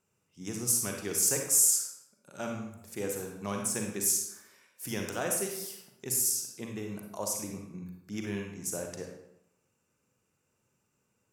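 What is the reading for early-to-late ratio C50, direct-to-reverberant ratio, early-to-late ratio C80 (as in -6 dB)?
3.0 dB, 1.5 dB, 6.5 dB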